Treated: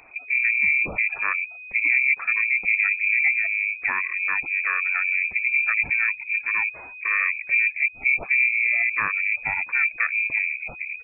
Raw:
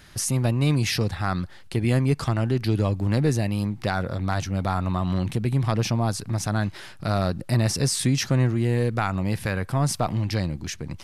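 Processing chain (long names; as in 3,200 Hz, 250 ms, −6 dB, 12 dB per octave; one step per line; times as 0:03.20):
gate on every frequency bin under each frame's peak −20 dB strong
pitch-shifted copies added −7 semitones −11 dB, +7 semitones −17 dB
voice inversion scrambler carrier 2,500 Hz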